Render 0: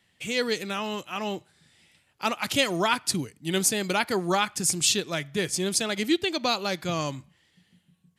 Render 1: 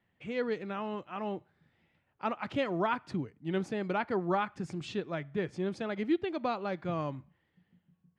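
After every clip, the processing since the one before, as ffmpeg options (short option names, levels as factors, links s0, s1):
-af "lowpass=1500,volume=0.596"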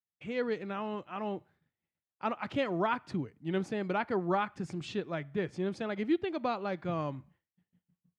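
-af "agate=range=0.0224:threshold=0.00141:ratio=3:detection=peak"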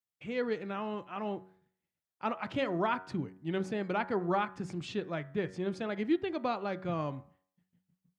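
-af "bandreject=f=93.49:t=h:w=4,bandreject=f=186.98:t=h:w=4,bandreject=f=280.47:t=h:w=4,bandreject=f=373.96:t=h:w=4,bandreject=f=467.45:t=h:w=4,bandreject=f=560.94:t=h:w=4,bandreject=f=654.43:t=h:w=4,bandreject=f=747.92:t=h:w=4,bandreject=f=841.41:t=h:w=4,bandreject=f=934.9:t=h:w=4,bandreject=f=1028.39:t=h:w=4,bandreject=f=1121.88:t=h:w=4,bandreject=f=1215.37:t=h:w=4,bandreject=f=1308.86:t=h:w=4,bandreject=f=1402.35:t=h:w=4,bandreject=f=1495.84:t=h:w=4,bandreject=f=1589.33:t=h:w=4,bandreject=f=1682.82:t=h:w=4,bandreject=f=1776.31:t=h:w=4,bandreject=f=1869.8:t=h:w=4,bandreject=f=1963.29:t=h:w=4"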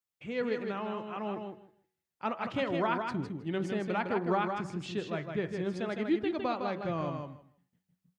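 -af "aecho=1:1:158|316|474:0.531|0.0849|0.0136"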